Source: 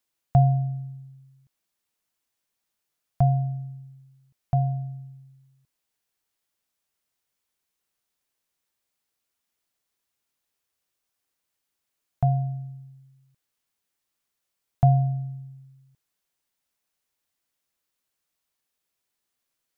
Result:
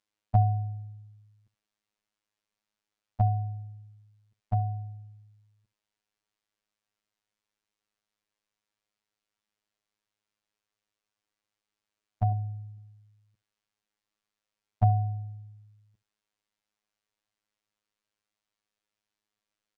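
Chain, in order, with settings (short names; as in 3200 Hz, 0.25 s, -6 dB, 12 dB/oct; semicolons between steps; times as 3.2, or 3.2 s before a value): 12.32–12.78 band shelf 530 Hz -8 dB; robotiser 105 Hz; air absorption 78 m; echo 71 ms -19 dB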